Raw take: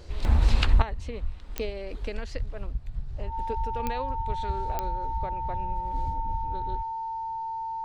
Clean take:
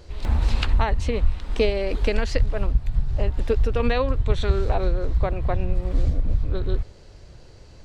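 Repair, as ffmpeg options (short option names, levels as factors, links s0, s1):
-af "adeclick=t=4,bandreject=f=900:w=30,asetnsamples=n=441:p=0,asendcmd='0.82 volume volume 11.5dB',volume=1"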